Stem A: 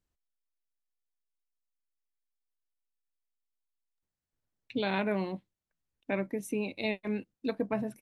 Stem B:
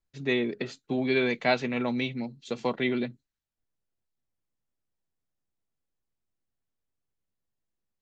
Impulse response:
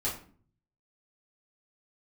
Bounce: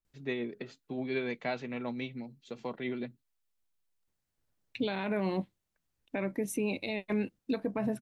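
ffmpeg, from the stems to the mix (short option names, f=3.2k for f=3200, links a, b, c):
-filter_complex "[0:a]acontrast=32,adelay=50,volume=0dB[a];[1:a]tremolo=f=6.9:d=0.33,highshelf=f=3.5k:g=-7,volume=-6.5dB[b];[a][b]amix=inputs=2:normalize=0,alimiter=limit=-22.5dB:level=0:latency=1:release=102"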